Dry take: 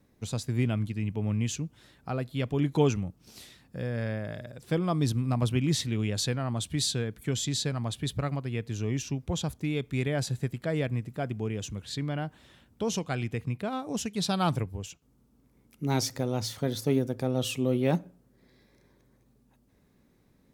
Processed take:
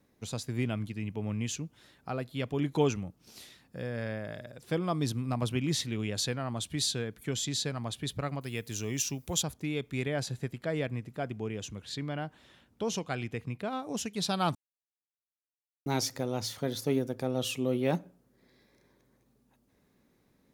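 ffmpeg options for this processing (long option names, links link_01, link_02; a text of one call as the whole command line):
ffmpeg -i in.wav -filter_complex "[0:a]asettb=1/sr,asplit=3[link_01][link_02][link_03];[link_01]atrim=end=8.414[link_04];[link_02]atrim=start=8.41:end=9.43,asetpts=PTS-STARTPTS,afade=type=in:duration=0.004:curve=qsin,afade=type=out:start_time=1.016:duration=0.004:curve=qsin,aemphasis=mode=production:type=75fm[link_05];[link_03]atrim=start=9.426[link_06];[link_04][link_05]acrossfade=duration=0.004:curve1=hsin:curve2=qsin[link_07];[link_07][link_06]acrossfade=duration=0.004:curve1=qsin:curve2=hsin,asettb=1/sr,asplit=3[link_08][link_09][link_10];[link_08]atrim=end=10.054[link_11];[link_09]atrim=start=10.05:end=13.83,asetpts=PTS-STARTPTS,afade=type=in:duration=0.004:curve=qsin,afade=type=out:start_time=3.776:duration=0.004:curve=qsin,highshelf=frequency=9500:gain=-5.5[link_12];[link_10]atrim=start=13.826[link_13];[link_11][link_12]acrossfade=duration=0.004:curve1=hsin:curve2=qsin[link_14];[link_14][link_13]acrossfade=duration=0.004:curve1=qsin:curve2=hsin,asplit=3[link_15][link_16][link_17];[link_15]atrim=end=14.55,asetpts=PTS-STARTPTS,afade=type=out:start_time=14.546:duration=0.004:curve=hsin[link_18];[link_16]atrim=start=14.55:end=15.86,asetpts=PTS-STARTPTS,volume=0[link_19];[link_17]atrim=start=15.86,asetpts=PTS-STARTPTS,afade=type=in:duration=0.004:curve=hsin[link_20];[link_18][link_19][link_20]concat=n=3:v=0:a=1,lowshelf=frequency=170:gain=-7.5,bandreject=frequency=8000:width=21,volume=-1dB" out.wav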